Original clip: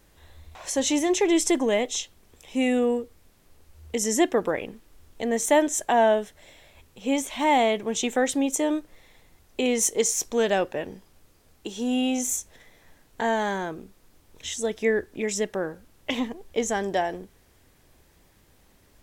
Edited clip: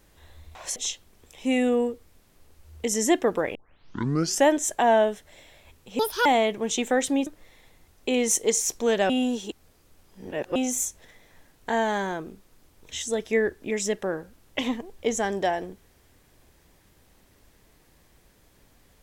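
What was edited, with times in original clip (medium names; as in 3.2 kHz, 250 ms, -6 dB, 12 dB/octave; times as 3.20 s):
0.76–1.86 s: delete
4.65 s: tape start 0.93 s
7.09–7.51 s: speed 158%
8.52–8.78 s: delete
10.61–12.07 s: reverse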